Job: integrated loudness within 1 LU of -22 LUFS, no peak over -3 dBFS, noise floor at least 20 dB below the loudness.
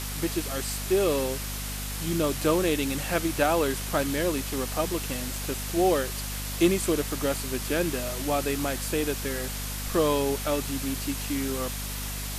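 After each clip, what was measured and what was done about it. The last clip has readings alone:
hum 50 Hz; highest harmonic 250 Hz; hum level -33 dBFS; noise floor -33 dBFS; noise floor target -48 dBFS; loudness -27.5 LUFS; peak level -10.5 dBFS; loudness target -22.0 LUFS
-> hum notches 50/100/150/200/250 Hz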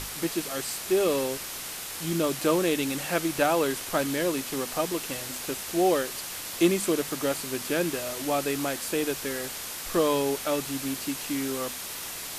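hum not found; noise floor -37 dBFS; noise floor target -48 dBFS
-> noise print and reduce 11 dB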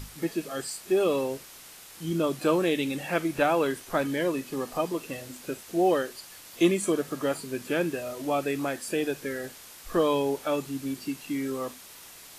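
noise floor -48 dBFS; noise floor target -49 dBFS
-> noise print and reduce 6 dB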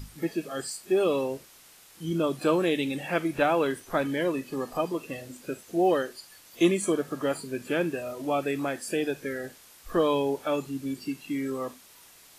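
noise floor -54 dBFS; loudness -28.5 LUFS; peak level -10.5 dBFS; loudness target -22.0 LUFS
-> trim +6.5 dB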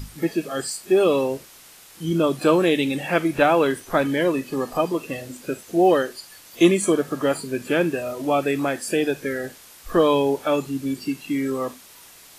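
loudness -22.0 LUFS; peak level -4.0 dBFS; noise floor -47 dBFS

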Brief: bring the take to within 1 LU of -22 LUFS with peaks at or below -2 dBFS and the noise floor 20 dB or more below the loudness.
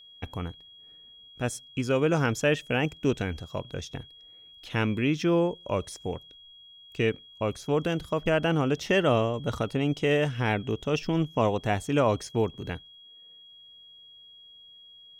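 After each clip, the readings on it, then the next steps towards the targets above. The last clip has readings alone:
steady tone 3.3 kHz; tone level -49 dBFS; loudness -27.5 LUFS; peak level -11.0 dBFS; loudness target -22.0 LUFS
-> band-stop 3.3 kHz, Q 30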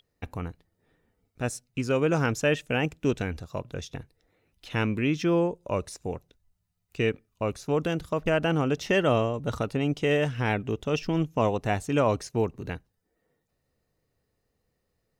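steady tone not found; loudness -27.5 LUFS; peak level -10.5 dBFS; loudness target -22.0 LUFS
-> trim +5.5 dB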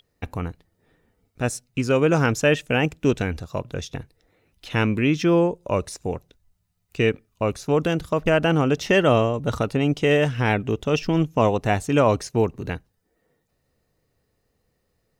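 loudness -22.0 LUFS; peak level -5.0 dBFS; noise floor -72 dBFS

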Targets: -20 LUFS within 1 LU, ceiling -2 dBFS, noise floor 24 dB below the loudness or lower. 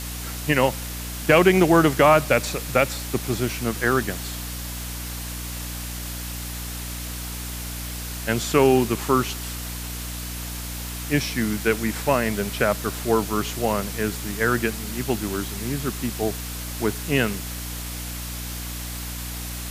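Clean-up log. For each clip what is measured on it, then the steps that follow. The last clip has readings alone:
hum 60 Hz; highest harmonic 300 Hz; hum level -31 dBFS; noise floor -32 dBFS; noise floor target -48 dBFS; loudness -24.0 LUFS; peak level -3.5 dBFS; loudness target -20.0 LUFS
-> hum notches 60/120/180/240/300 Hz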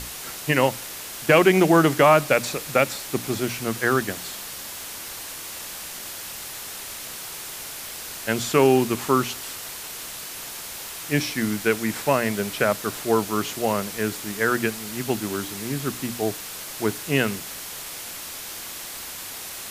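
hum not found; noise floor -36 dBFS; noise floor target -49 dBFS
-> noise reduction 13 dB, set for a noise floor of -36 dBFS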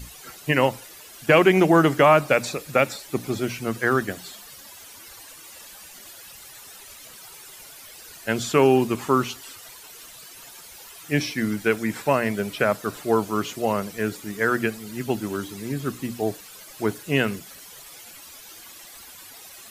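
noise floor -45 dBFS; noise floor target -47 dBFS
-> noise reduction 6 dB, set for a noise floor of -45 dBFS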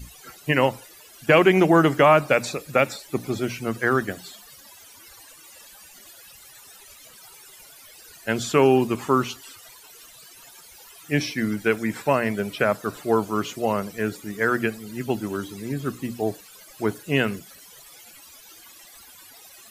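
noise floor -48 dBFS; loudness -23.0 LUFS; peak level -3.5 dBFS; loudness target -20.0 LUFS
-> trim +3 dB; peak limiter -2 dBFS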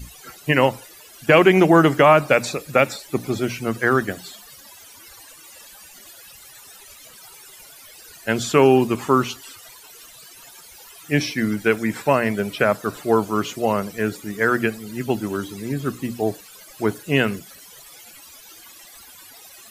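loudness -20.0 LUFS; peak level -2.0 dBFS; noise floor -45 dBFS

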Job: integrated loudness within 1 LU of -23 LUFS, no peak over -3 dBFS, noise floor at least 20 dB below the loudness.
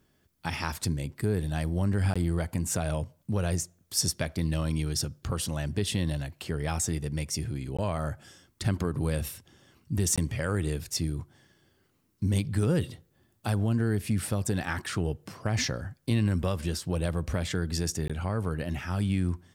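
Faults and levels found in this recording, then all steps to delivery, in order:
dropouts 4; longest dropout 16 ms; loudness -30.0 LUFS; peak level -12.5 dBFS; loudness target -23.0 LUFS
-> interpolate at 2.14/7.77/10.16/18.08 s, 16 ms; trim +7 dB

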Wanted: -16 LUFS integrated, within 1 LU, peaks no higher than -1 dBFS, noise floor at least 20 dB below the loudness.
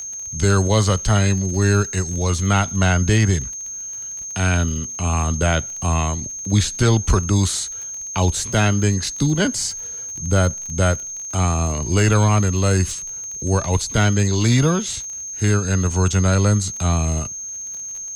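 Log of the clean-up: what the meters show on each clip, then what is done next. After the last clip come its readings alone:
tick rate 31 per s; steady tone 6.4 kHz; tone level -28 dBFS; loudness -19.5 LUFS; peak level -5.5 dBFS; loudness target -16.0 LUFS
-> de-click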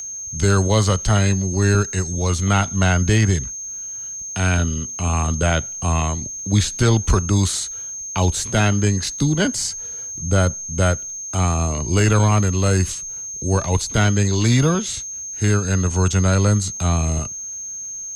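tick rate 0.17 per s; steady tone 6.4 kHz; tone level -28 dBFS
-> band-stop 6.4 kHz, Q 30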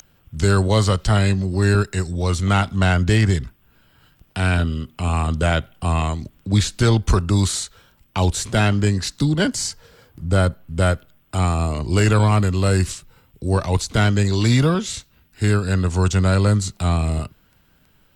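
steady tone not found; loudness -20.0 LUFS; peak level -6.5 dBFS; loudness target -16.0 LUFS
-> trim +4 dB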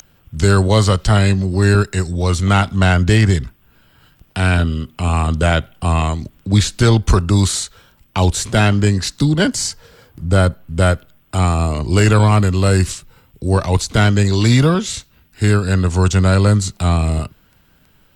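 loudness -16.0 LUFS; peak level -2.5 dBFS; noise floor -54 dBFS

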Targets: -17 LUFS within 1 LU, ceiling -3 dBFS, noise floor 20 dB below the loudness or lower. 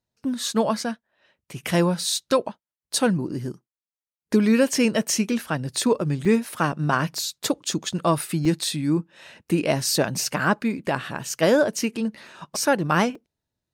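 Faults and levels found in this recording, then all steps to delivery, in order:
dropouts 4; longest dropout 3.6 ms; loudness -23.5 LUFS; peak level -6.5 dBFS; loudness target -17.0 LUFS
-> interpolate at 6.25/7.15/8.45/13.15 s, 3.6 ms; trim +6.5 dB; peak limiter -3 dBFS

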